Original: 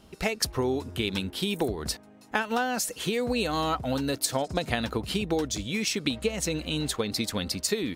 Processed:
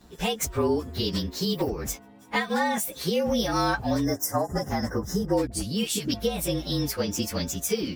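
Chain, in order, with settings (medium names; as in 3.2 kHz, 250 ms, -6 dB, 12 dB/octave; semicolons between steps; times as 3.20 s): frequency axis rescaled in octaves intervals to 111%; 4.05–5.33 s: time-frequency box 2.1–4.9 kHz -19 dB; 5.47–6.14 s: phase dispersion highs, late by 46 ms, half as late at 490 Hz; trim +4.5 dB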